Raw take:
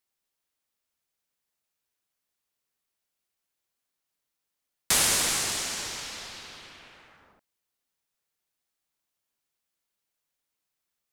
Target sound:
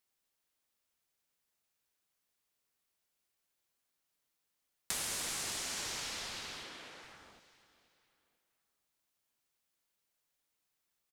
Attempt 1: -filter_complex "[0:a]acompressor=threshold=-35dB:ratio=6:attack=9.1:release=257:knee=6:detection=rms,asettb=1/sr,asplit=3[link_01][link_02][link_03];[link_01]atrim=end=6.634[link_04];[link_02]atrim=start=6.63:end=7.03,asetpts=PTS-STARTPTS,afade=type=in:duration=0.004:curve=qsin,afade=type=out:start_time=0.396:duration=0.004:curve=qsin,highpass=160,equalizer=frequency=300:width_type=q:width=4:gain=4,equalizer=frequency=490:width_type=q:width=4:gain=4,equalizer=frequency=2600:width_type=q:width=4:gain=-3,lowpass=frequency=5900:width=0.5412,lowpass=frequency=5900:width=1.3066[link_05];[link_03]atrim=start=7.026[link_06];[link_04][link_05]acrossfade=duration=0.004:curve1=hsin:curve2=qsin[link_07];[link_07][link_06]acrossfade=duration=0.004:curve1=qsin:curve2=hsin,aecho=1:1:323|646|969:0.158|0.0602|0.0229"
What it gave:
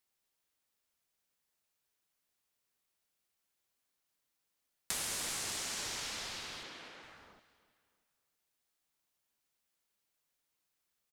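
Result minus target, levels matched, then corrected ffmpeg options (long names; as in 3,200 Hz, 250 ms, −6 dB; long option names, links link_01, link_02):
echo 168 ms early
-filter_complex "[0:a]acompressor=threshold=-35dB:ratio=6:attack=9.1:release=257:knee=6:detection=rms,asettb=1/sr,asplit=3[link_01][link_02][link_03];[link_01]atrim=end=6.634[link_04];[link_02]atrim=start=6.63:end=7.03,asetpts=PTS-STARTPTS,afade=type=in:duration=0.004:curve=qsin,afade=type=out:start_time=0.396:duration=0.004:curve=qsin,highpass=160,equalizer=frequency=300:width_type=q:width=4:gain=4,equalizer=frequency=490:width_type=q:width=4:gain=4,equalizer=frequency=2600:width_type=q:width=4:gain=-3,lowpass=frequency=5900:width=0.5412,lowpass=frequency=5900:width=1.3066[link_05];[link_03]atrim=start=7.026[link_06];[link_04][link_05]acrossfade=duration=0.004:curve1=hsin:curve2=qsin[link_07];[link_07][link_06]acrossfade=duration=0.004:curve1=qsin:curve2=hsin,aecho=1:1:491|982|1473:0.158|0.0602|0.0229"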